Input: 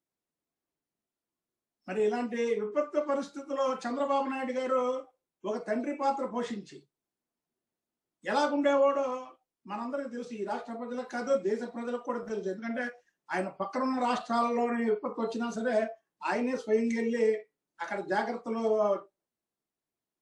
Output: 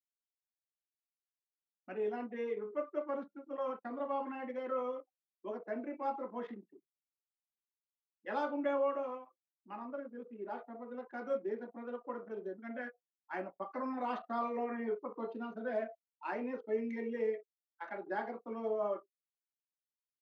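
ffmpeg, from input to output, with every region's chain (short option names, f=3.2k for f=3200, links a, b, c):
-filter_complex "[0:a]asettb=1/sr,asplit=3[a][b][c];[a]atrim=end=3.574[d];[b]atrim=start=3.57:end=4.34,asetpts=PTS-STARTPTS,afade=t=in:d=0.004:c=qsin,afade=t=out:st=0.766:d=0.004:c=qsin,agate=range=-33dB:threshold=-38dB:ratio=3:release=100:detection=peak,highshelf=f=3.6k:g=-7[e];[c]atrim=start=4.336[f];[d][e]acrossfade=d=0.004:c1=hsin:c2=qsin[g];[g][f]acrossfade=d=0.004:c1=qsin:c2=hsin,lowpass=2.5k,anlmdn=0.1,highpass=f=210:w=0.5412,highpass=f=210:w=1.3066,volume=-8dB"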